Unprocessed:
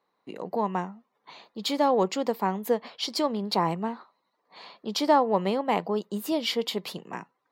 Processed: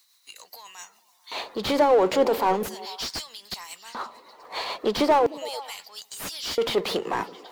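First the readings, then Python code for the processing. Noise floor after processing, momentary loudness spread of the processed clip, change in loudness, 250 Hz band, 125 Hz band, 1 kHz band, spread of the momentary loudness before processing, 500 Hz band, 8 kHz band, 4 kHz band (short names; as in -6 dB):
-62 dBFS, 19 LU, +2.0 dB, -2.0 dB, -6.0 dB, +1.0 dB, 17 LU, +3.5 dB, +4.0 dB, +1.5 dB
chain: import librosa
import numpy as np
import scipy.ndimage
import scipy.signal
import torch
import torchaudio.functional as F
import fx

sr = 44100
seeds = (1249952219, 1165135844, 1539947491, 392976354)

p1 = fx.over_compress(x, sr, threshold_db=-29.0, ratio=-1.0)
p2 = x + F.gain(torch.from_numpy(p1), -1.0).numpy()
p3 = fx.filter_lfo_highpass(p2, sr, shape='square', hz=0.38, low_hz=400.0, high_hz=6100.0, q=1.1)
p4 = fx.power_curve(p3, sr, exponent=0.7)
p5 = p4 * (1.0 - 0.4 / 2.0 + 0.4 / 2.0 * np.cos(2.0 * np.pi * 7.2 * (np.arange(len(p4)) / sr)))
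p6 = p5 + fx.echo_stepped(p5, sr, ms=110, hz=210.0, octaves=0.7, feedback_pct=70, wet_db=-11, dry=0)
p7 = fx.slew_limit(p6, sr, full_power_hz=130.0)
y = F.gain(torch.from_numpy(p7), 1.0).numpy()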